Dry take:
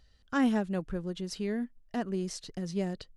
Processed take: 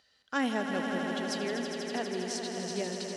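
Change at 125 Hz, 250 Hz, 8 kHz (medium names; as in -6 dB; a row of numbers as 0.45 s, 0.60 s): -6.0 dB, -3.0 dB, +5.5 dB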